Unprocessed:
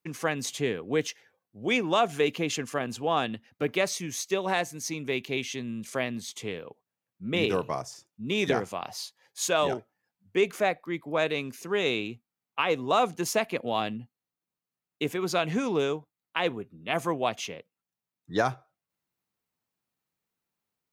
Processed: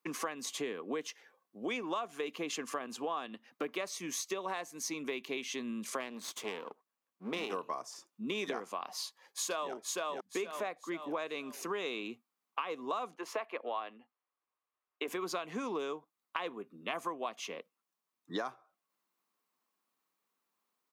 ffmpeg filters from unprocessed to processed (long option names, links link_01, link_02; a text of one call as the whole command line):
ffmpeg -i in.wav -filter_complex "[0:a]asettb=1/sr,asplit=3[link_01][link_02][link_03];[link_01]atrim=end=6.004[link_04];[link_02]atrim=start=6:end=7.52,asetpts=PTS-STARTPTS,afade=type=in:duration=0.004:curve=qsin,afade=type=out:start_time=1.516:duration=0.004:curve=qsin,aeval=exprs='if(lt(val(0),0),0.251*val(0),val(0))':channel_layout=same[link_05];[link_03]atrim=start=7.516[link_06];[link_04][link_05]acrossfade=duration=0.004:curve1=hsin:curve2=qsin[link_07];[link_07][link_06]acrossfade=duration=0.004:curve1=qsin:curve2=hsin,asplit=2[link_08][link_09];[link_09]afade=type=in:start_time=9.03:duration=0.01,afade=type=out:start_time=9.73:duration=0.01,aecho=0:1:470|940|1410|1880|2350:0.749894|0.262463|0.091862|0.0321517|0.0112531[link_10];[link_08][link_10]amix=inputs=2:normalize=0,asettb=1/sr,asplit=3[link_11][link_12][link_13];[link_11]atrim=end=13.154[link_14];[link_12]atrim=start=13.15:end=15.08,asetpts=PTS-STARTPTS,afade=type=in:duration=0.004:curve=qsin,afade=type=out:start_time=1.926:duration=0.004:curve=qsin,acrossover=split=360 3200:gain=0.0891 1 0.141[link_15][link_16][link_17];[link_15][link_16][link_17]amix=inputs=3:normalize=0[link_18];[link_13]atrim=start=15.076[link_19];[link_14][link_18]acrossfade=duration=0.004:curve1=hsin:curve2=qsin[link_20];[link_20][link_19]acrossfade=duration=0.004:curve1=qsin:curve2=hsin,highpass=frequency=220:width=0.5412,highpass=frequency=220:width=1.3066,equalizer=frequency=1100:width=4.1:gain=10,acompressor=threshold=-36dB:ratio=6,volume=1dB" out.wav